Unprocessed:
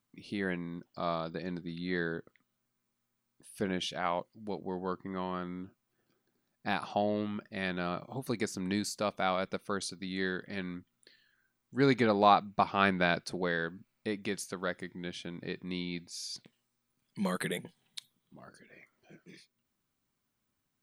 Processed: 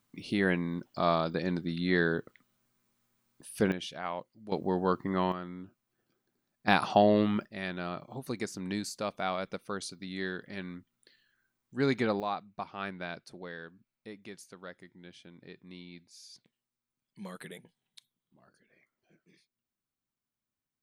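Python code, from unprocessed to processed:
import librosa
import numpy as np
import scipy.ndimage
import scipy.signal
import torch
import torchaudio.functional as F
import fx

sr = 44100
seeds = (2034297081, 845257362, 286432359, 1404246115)

y = fx.gain(x, sr, db=fx.steps((0.0, 6.5), (3.72, -4.0), (4.52, 7.5), (5.32, -2.0), (6.68, 8.0), (7.45, -2.0), (12.2, -11.0)))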